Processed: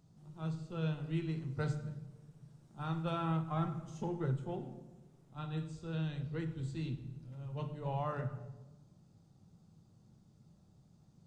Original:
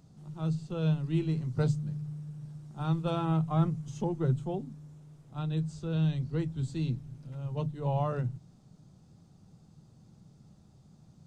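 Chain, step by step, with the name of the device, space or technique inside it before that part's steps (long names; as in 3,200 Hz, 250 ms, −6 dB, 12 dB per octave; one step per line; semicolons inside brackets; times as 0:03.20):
compressed reverb return (on a send at −4 dB: convolution reverb RT60 1.2 s, pre-delay 10 ms + downward compressor, threshold −28 dBFS, peak gain reduction 7.5 dB)
on the sum: dynamic equaliser 1,800 Hz, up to +8 dB, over −53 dBFS, Q 0.97
level −8 dB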